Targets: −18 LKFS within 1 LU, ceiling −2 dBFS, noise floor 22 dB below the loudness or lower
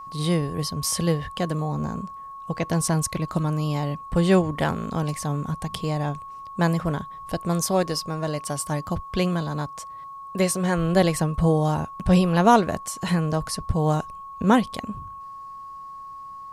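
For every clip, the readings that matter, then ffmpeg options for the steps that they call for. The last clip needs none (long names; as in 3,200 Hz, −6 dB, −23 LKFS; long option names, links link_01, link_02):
interfering tone 1,100 Hz; level of the tone −36 dBFS; integrated loudness −24.0 LKFS; sample peak −4.5 dBFS; target loudness −18.0 LKFS
→ -af "bandreject=frequency=1100:width=30"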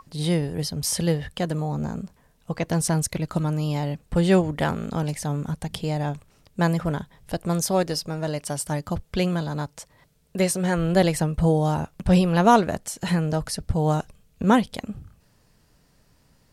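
interfering tone none found; integrated loudness −24.0 LKFS; sample peak −4.5 dBFS; target loudness −18.0 LKFS
→ -af "volume=6dB,alimiter=limit=-2dB:level=0:latency=1"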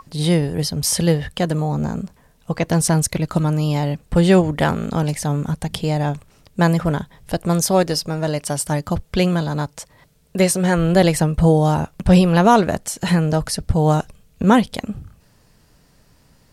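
integrated loudness −18.5 LKFS; sample peak −2.0 dBFS; background noise floor −55 dBFS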